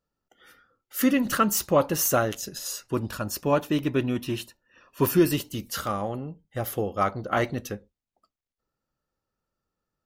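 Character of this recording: noise floor -88 dBFS; spectral tilt -4.5 dB/octave

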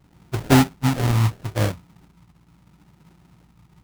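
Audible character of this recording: phasing stages 4, 0.75 Hz, lowest notch 550–1300 Hz; aliases and images of a low sample rate 1.1 kHz, jitter 20%

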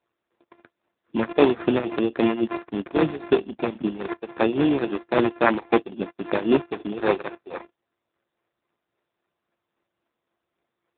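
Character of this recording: a buzz of ramps at a fixed pitch in blocks of 16 samples; tremolo triangle 3.7 Hz, depth 85%; aliases and images of a low sample rate 3.1 kHz, jitter 0%; AMR-NB

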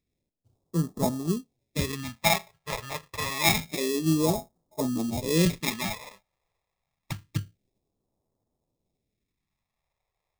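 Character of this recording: aliases and images of a low sample rate 1.5 kHz, jitter 0%; phasing stages 2, 0.27 Hz, lowest notch 250–2300 Hz

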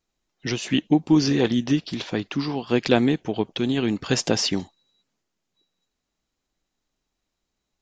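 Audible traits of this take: noise floor -81 dBFS; spectral tilt -5.0 dB/octave

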